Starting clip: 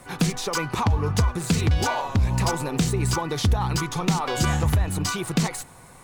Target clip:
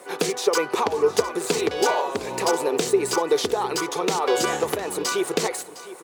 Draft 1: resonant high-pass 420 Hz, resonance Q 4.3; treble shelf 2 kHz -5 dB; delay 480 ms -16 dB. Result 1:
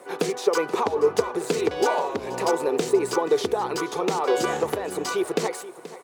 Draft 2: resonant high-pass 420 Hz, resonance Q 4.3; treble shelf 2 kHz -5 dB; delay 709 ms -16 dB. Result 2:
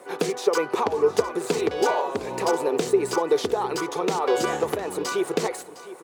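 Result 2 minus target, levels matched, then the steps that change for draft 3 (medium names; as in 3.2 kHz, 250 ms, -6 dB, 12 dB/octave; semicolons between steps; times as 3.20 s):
4 kHz band -4.5 dB
change: treble shelf 2 kHz +2 dB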